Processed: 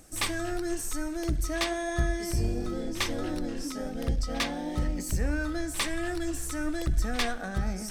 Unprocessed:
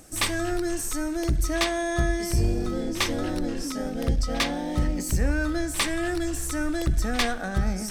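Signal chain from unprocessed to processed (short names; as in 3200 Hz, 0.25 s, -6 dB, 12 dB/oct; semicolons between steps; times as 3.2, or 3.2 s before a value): flange 1 Hz, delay 0.4 ms, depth 4.4 ms, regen +81%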